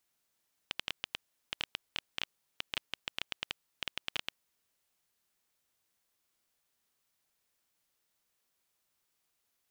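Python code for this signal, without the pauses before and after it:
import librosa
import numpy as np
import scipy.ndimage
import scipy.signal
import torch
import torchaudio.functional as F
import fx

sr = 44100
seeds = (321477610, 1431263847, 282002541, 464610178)

y = fx.geiger_clicks(sr, seeds[0], length_s=3.6, per_s=9.4, level_db=-15.5)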